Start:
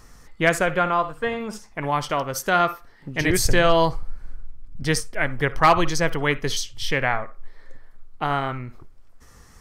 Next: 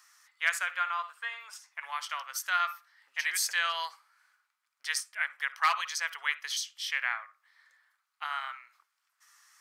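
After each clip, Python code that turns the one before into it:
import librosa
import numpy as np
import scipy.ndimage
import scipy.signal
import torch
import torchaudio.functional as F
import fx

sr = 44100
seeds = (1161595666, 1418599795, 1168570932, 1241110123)

y = scipy.signal.sosfilt(scipy.signal.butter(4, 1200.0, 'highpass', fs=sr, output='sos'), x)
y = F.gain(torch.from_numpy(y), -5.5).numpy()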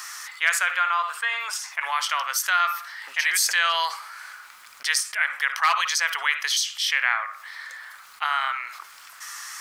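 y = fx.env_flatten(x, sr, amount_pct=50)
y = F.gain(torch.from_numpy(y), 4.5).numpy()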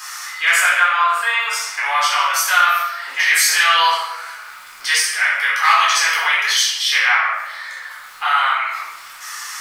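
y = fx.room_shoebox(x, sr, seeds[0], volume_m3=430.0, walls='mixed', distance_m=3.9)
y = F.gain(torch.from_numpy(y), -1.0).numpy()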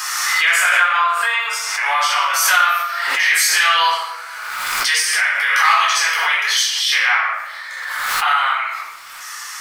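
y = fx.pre_swell(x, sr, db_per_s=26.0)
y = F.gain(torch.from_numpy(y), -1.0).numpy()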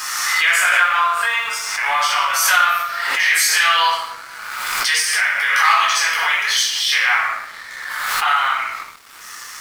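y = np.sign(x) * np.maximum(np.abs(x) - 10.0 ** (-37.5 / 20.0), 0.0)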